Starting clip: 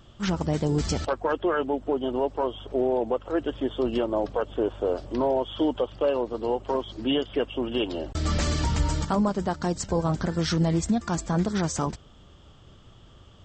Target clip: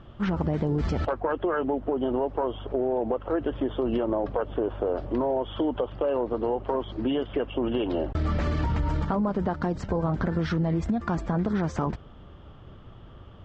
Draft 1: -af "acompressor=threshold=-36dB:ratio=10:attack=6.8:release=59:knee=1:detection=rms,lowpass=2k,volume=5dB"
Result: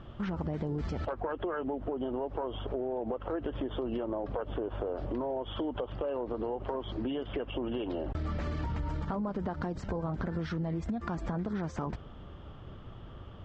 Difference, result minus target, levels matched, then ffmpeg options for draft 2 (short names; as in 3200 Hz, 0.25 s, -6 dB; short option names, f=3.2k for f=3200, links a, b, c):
compressor: peak gain reduction +8 dB
-af "acompressor=threshold=-27dB:ratio=10:attack=6.8:release=59:knee=1:detection=rms,lowpass=2k,volume=5dB"